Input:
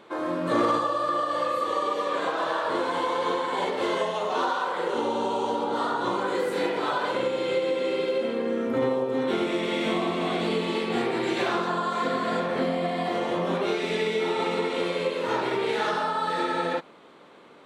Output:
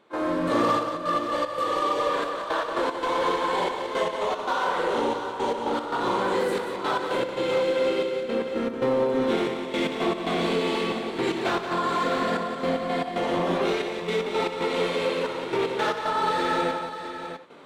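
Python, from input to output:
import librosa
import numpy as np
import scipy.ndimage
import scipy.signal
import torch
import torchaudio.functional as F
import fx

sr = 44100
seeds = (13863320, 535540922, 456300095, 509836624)

p1 = 10.0 ** (-27.0 / 20.0) * (np.abs((x / 10.0 ** (-27.0 / 20.0) + 3.0) % 4.0 - 2.0) - 1.0)
p2 = x + (p1 * 10.0 ** (-8.5 / 20.0))
p3 = fx.step_gate(p2, sr, bpm=114, pattern='.xxxxx..x.x', floor_db=-12.0, edge_ms=4.5)
y = fx.echo_multitap(p3, sr, ms=(61, 179, 652), db=(-12.0, -8.0, -9.5))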